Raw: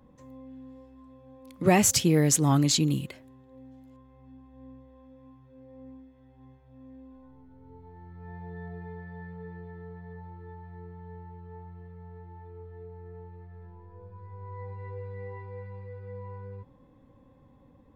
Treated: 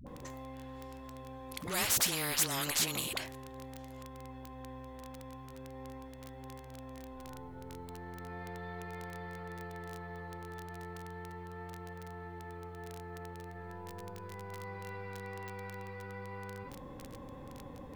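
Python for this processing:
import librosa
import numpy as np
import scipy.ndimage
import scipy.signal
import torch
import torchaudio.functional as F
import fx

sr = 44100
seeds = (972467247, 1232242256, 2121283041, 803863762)

y = fx.vibrato(x, sr, rate_hz=0.37, depth_cents=8.7)
y = fx.dmg_crackle(y, sr, seeds[0], per_s=17.0, level_db=-45.0)
y = fx.dispersion(y, sr, late='highs', ms=69.0, hz=420.0)
y = fx.spectral_comp(y, sr, ratio=4.0)
y = F.gain(torch.from_numpy(y), -6.5).numpy()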